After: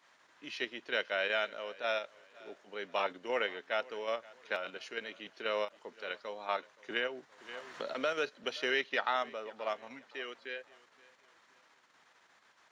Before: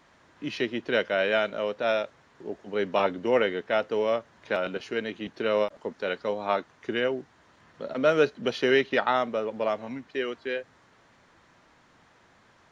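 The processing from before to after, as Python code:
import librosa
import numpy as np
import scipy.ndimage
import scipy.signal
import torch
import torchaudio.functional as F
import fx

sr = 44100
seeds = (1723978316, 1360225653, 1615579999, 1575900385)

p1 = fx.highpass(x, sr, hz=1200.0, slope=6)
p2 = fx.level_steps(p1, sr, step_db=16)
p3 = p1 + (p2 * librosa.db_to_amplitude(0.0))
p4 = fx.echo_feedback(p3, sr, ms=522, feedback_pct=37, wet_db=-22)
p5 = fx.band_squash(p4, sr, depth_pct=70, at=(6.9, 8.44))
y = p5 * librosa.db_to_amplitude(-7.5)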